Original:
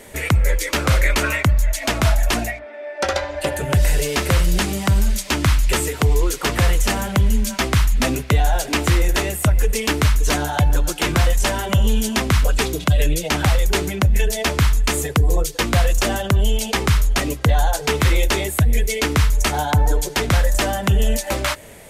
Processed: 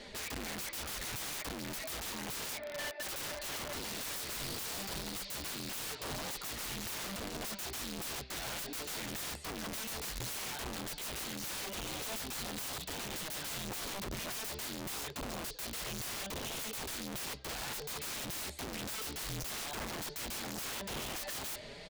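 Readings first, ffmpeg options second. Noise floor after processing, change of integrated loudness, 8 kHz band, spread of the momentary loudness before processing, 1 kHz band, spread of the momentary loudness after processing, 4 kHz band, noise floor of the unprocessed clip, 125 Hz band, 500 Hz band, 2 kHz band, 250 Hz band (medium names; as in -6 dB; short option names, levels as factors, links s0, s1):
-47 dBFS, -19.5 dB, -14.0 dB, 3 LU, -20.0 dB, 2 LU, -14.5 dB, -34 dBFS, -30.5 dB, -21.5 dB, -19.0 dB, -21.0 dB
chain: -af "aecho=1:1:4.9:0.32,areverse,acompressor=threshold=0.0631:ratio=6,areverse,flanger=delay=3.5:depth=7:regen=-36:speed=0.54:shape=triangular,lowpass=f=4400:t=q:w=4.4,aeval=exprs='(mod(35.5*val(0)+1,2)-1)/35.5':c=same,volume=0.596"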